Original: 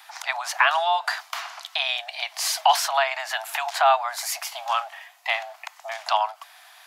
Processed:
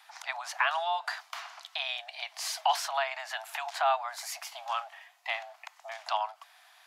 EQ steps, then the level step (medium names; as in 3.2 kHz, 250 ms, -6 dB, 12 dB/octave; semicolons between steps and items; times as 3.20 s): treble shelf 12 kHz -8 dB; -8.5 dB